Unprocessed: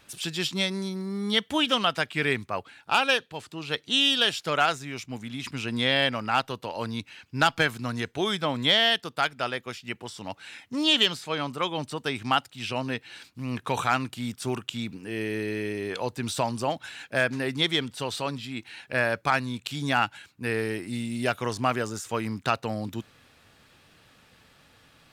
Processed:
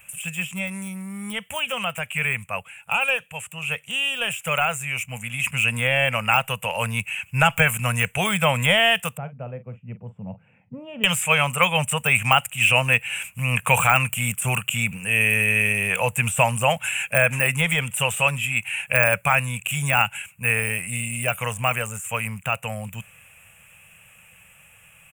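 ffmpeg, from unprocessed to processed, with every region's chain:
ffmpeg -i in.wav -filter_complex "[0:a]asettb=1/sr,asplit=3[link_01][link_02][link_03];[link_01]atrim=end=9.174[link_04];[link_02]atrim=start=9.17:end=11.04,asetpts=PTS-STARTPTS,afade=type=in:duration=0.004:curve=qsin,afade=type=out:start_time=1.866:duration=0.004:curve=qsin,asuperpass=centerf=200:order=4:qfactor=0.72,asplit=2[link_05][link_06];[link_06]adelay=43,volume=-13dB[link_07];[link_05][link_07]amix=inputs=2:normalize=0,atrim=end_sample=82467[link_08];[link_03]atrim=start=11.036[link_09];[link_04][link_08]acrossfade=duration=0.004:curve1=hsin:curve2=qsin[link_10];[link_10][link_09]acrossfade=duration=0.004:curve1=qsin:curve2=hsin,deesser=0.95,firequalizer=gain_entry='entry(180,0);entry(310,-28);entry(500,-3);entry(1700,-1);entry(2600,13);entry(4200,-27);entry(7600,13)':delay=0.05:min_phase=1,dynaudnorm=framelen=950:gausssize=13:maxgain=11.5dB,volume=2dB" out.wav

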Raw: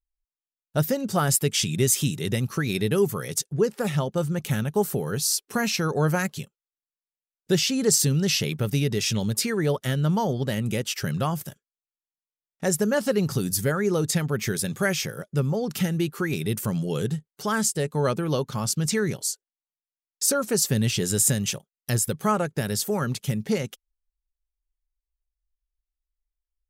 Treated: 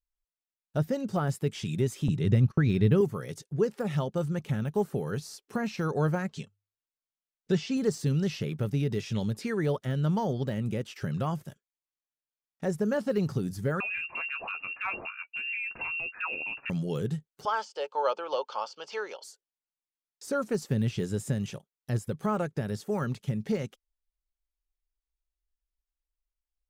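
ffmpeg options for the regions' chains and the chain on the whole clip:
ffmpeg -i in.wav -filter_complex "[0:a]asettb=1/sr,asplit=3[link_01][link_02][link_03];[link_01]atrim=end=2.084[link_04];[link_02]atrim=start=2.08:end=3.01,asetpts=PTS-STARTPTS,afade=type=in:duration=0.004:curve=qsin,afade=type=out:start_time=0.926:duration=0.004:curve=qsin,aemphasis=mode=reproduction:type=bsi,agate=range=-28dB:threshold=-32dB:ratio=16:release=100:detection=peak[link_05];[link_03]atrim=start=3.006[link_06];[link_04][link_05]acrossfade=duration=0.004:curve1=hsin:curve2=qsin[link_07];[link_07][link_06]acrossfade=duration=0.004:curve1=qsin:curve2=hsin,asettb=1/sr,asplit=3[link_08][link_09][link_10];[link_08]atrim=end=6.294[link_11];[link_09]atrim=start=6.29:end=7.77,asetpts=PTS-STARTPTS,afade=type=in:duration=0.004:curve=qsin,afade=type=out:start_time=1.476:duration=0.004:curve=qsin,lowpass=frequency=8200:width=0.5412,lowpass=frequency=8200:width=1.3066,bandreject=frequency=50:width_type=h:width=6,bandreject=frequency=100:width_type=h:width=6,aecho=1:1:4.5:0.37,atrim=end_sample=65268[link_12];[link_10]atrim=start=7.766[link_13];[link_11][link_12]acrossfade=duration=0.004:curve1=hsin:curve2=qsin[link_14];[link_14][link_13]acrossfade=duration=0.004:curve1=qsin:curve2=hsin,asettb=1/sr,asplit=3[link_15][link_16][link_17];[link_15]atrim=end=13.804[link_18];[link_16]atrim=start=13.8:end=16.7,asetpts=PTS-STARTPTS,afade=type=in:duration=0.004:curve=qsin,afade=type=out:start_time=2.896:duration=0.004:curve=qsin,lowshelf=frequency=130:gain=-8,asplit=2[link_19][link_20];[link_20]adelay=13,volume=-8dB[link_21];[link_19][link_21]amix=inputs=2:normalize=0,atrim=end_sample=127890,lowpass=frequency=2500:width_type=q:width=0.5098,lowpass=frequency=2500:width_type=q:width=0.6013,lowpass=frequency=2500:width_type=q:width=0.9,lowpass=frequency=2500:width_type=q:width=2.563,afreqshift=-2900[link_22];[link_17]atrim=start=16.696[link_23];[link_18][link_22]acrossfade=duration=0.004:curve1=hsin:curve2=qsin[link_24];[link_24][link_23]acrossfade=duration=0.004:curve1=qsin:curve2=hsin,asettb=1/sr,asplit=3[link_25][link_26][link_27];[link_25]atrim=end=17.454[link_28];[link_26]atrim=start=17.45:end=19.24,asetpts=PTS-STARTPTS,afade=type=in:duration=0.004:curve=qsin,afade=type=out:start_time=1.786:duration=0.004:curve=qsin,highpass=frequency=500:width=0.5412,highpass=frequency=500:width=1.3066,equalizer=frequency=530:width_type=q:width=4:gain=5,equalizer=frequency=900:width_type=q:width=4:gain=9,equalizer=frequency=1300:width_type=q:width=4:gain=4,equalizer=frequency=1900:width_type=q:width=4:gain=-9,equalizer=frequency=3000:width_type=q:width=4:gain=6,equalizer=frequency=4500:width_type=q:width=4:gain=5,lowpass=frequency=5400:width=0.5412,lowpass=frequency=5400:width=1.3066,bandreject=frequency=3900:width=6.6[link_29];[link_27]atrim=start=19.236[link_30];[link_28][link_29]acrossfade=duration=0.004:curve1=hsin:curve2=qsin[link_31];[link_31][link_30]acrossfade=duration=0.004:curve1=qsin:curve2=hsin,deesser=0.95,highshelf=frequency=9700:gain=-11,volume=-4dB" out.wav

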